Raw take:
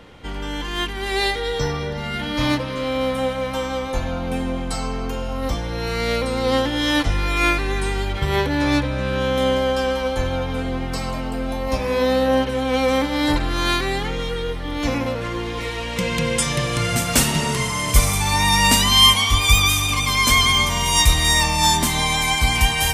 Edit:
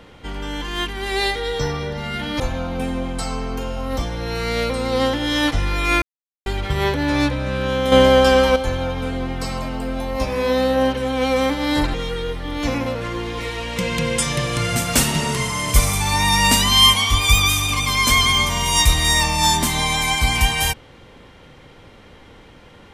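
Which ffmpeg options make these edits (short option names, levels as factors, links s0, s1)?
-filter_complex "[0:a]asplit=7[s0][s1][s2][s3][s4][s5][s6];[s0]atrim=end=2.402[s7];[s1]atrim=start=3.918:end=7.54,asetpts=PTS-STARTPTS,afade=t=out:st=3.618:d=0.004:c=hsin[s8];[s2]atrim=start=7.54:end=7.98,asetpts=PTS-STARTPTS,volume=0[s9];[s3]atrim=start=7.98:end=9.442,asetpts=PTS-STARTPTS,afade=t=in:d=0.004:c=hsin[s10];[s4]atrim=start=9.438:end=10.082,asetpts=PTS-STARTPTS,volume=2.37[s11];[s5]atrim=start=10.078:end=13.462[s12];[s6]atrim=start=14.138[s13];[s8][s9][s10]concat=n=3:v=0:a=1[s14];[s7][s14]acrossfade=d=0.004:c1=hsin:c2=hsin[s15];[s15][s11]acrossfade=d=0.004:c1=hsin:c2=hsin[s16];[s16][s12]acrossfade=d=0.004:c1=hsin:c2=hsin[s17];[s17][s13]acrossfade=d=0.004:c1=hsin:c2=hsin"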